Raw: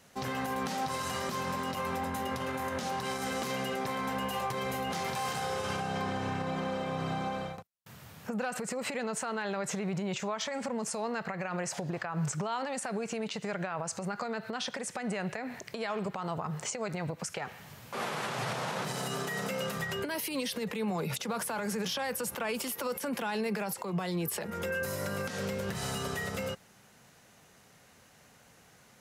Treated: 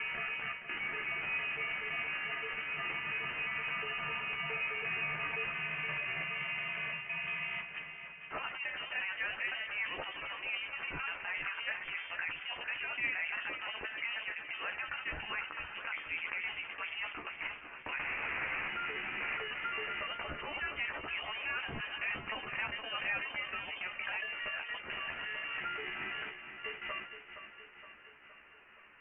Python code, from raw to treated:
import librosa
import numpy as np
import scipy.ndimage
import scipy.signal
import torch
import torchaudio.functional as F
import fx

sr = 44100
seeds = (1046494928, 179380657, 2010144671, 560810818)

p1 = fx.block_reorder(x, sr, ms=173.0, group=4)
p2 = scipy.signal.sosfilt(scipy.signal.butter(2, 910.0, 'highpass', fs=sr, output='sos'), p1)
p3 = fx.level_steps(p2, sr, step_db=16)
p4 = p2 + (p3 * 10.0 ** (-2.5 / 20.0))
p5 = fx.air_absorb(p4, sr, metres=280.0)
p6 = fx.doubler(p5, sr, ms=13.0, db=-4.5)
p7 = p6 + fx.echo_feedback(p6, sr, ms=468, feedback_pct=60, wet_db=-10.0, dry=0)
p8 = fx.freq_invert(p7, sr, carrier_hz=3300)
y = fx.sustainer(p8, sr, db_per_s=110.0)